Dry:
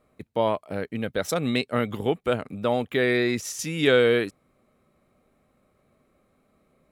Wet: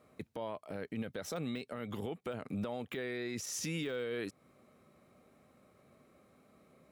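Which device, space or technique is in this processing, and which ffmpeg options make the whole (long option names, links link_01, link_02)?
broadcast voice chain: -af "highpass=84,deesser=0.75,acompressor=threshold=-32dB:ratio=4,equalizer=frequency=5600:width_type=o:width=0.55:gain=3,alimiter=level_in=7dB:limit=-24dB:level=0:latency=1:release=48,volume=-7dB,volume=1.5dB"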